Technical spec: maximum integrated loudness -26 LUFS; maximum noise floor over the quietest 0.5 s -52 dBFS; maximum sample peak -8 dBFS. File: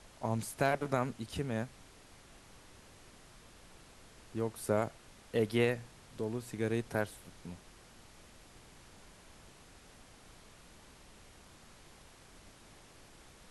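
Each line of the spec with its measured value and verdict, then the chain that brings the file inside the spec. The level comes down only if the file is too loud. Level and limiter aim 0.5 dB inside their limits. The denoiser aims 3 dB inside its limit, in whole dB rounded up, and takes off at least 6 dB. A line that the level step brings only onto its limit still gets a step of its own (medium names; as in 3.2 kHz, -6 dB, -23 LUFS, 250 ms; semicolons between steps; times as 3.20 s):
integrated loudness -35.5 LUFS: pass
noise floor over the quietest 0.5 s -57 dBFS: pass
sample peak -16.0 dBFS: pass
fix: none needed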